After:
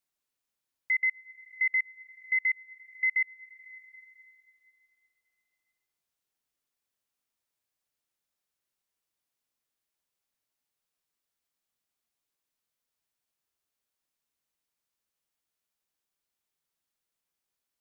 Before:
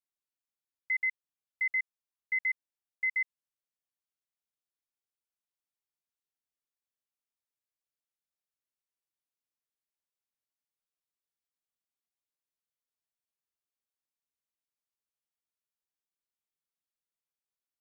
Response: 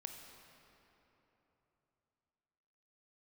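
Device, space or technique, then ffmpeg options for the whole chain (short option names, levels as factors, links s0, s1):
ducked reverb: -filter_complex "[0:a]asplit=3[s0][s1][s2];[1:a]atrim=start_sample=2205[s3];[s1][s3]afir=irnorm=-1:irlink=0[s4];[s2]apad=whole_len=785269[s5];[s4][s5]sidechaincompress=threshold=0.00398:ratio=8:attack=16:release=343,volume=1.12[s6];[s0][s6]amix=inputs=2:normalize=0,volume=1.41"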